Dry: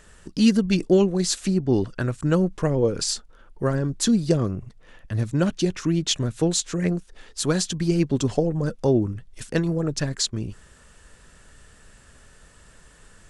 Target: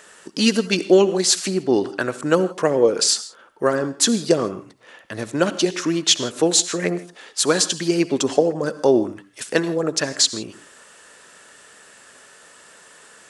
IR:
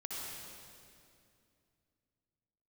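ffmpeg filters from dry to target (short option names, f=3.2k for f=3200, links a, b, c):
-filter_complex "[0:a]highpass=380,asplit=2[a][b];[1:a]atrim=start_sample=2205,afade=t=out:st=0.22:d=0.01,atrim=end_sample=10143[c];[b][c]afir=irnorm=-1:irlink=0,volume=-9.5dB[d];[a][d]amix=inputs=2:normalize=0,volume=6.5dB"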